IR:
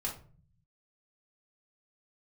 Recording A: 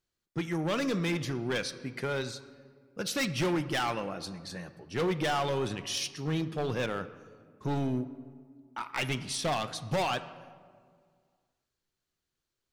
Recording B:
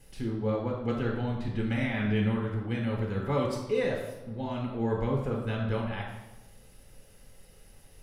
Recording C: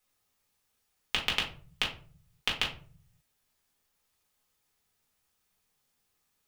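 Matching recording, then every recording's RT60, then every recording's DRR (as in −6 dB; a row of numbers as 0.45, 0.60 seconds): C; 2.0, 1.0, 0.40 seconds; 11.5, −1.0, −3.0 decibels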